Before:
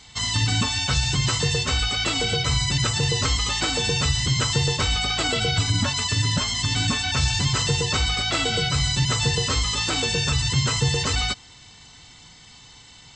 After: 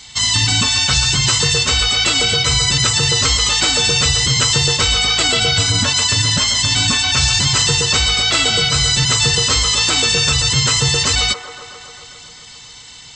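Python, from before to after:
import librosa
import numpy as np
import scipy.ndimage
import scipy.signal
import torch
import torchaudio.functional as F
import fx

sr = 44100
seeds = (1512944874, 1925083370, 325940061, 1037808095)

p1 = fx.high_shelf(x, sr, hz=2000.0, db=9.0)
p2 = p1 + fx.echo_wet_bandpass(p1, sr, ms=134, feedback_pct=76, hz=830.0, wet_db=-9.0, dry=0)
y = F.gain(torch.from_numpy(p2), 3.0).numpy()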